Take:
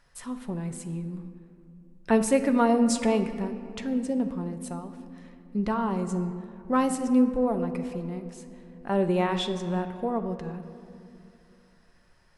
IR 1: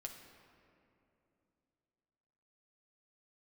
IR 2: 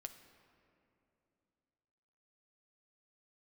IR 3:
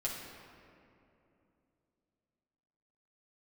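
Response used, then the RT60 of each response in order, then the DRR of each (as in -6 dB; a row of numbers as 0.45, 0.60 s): 2; 2.9, 2.9, 2.8 s; 1.5, 6.5, -5.5 dB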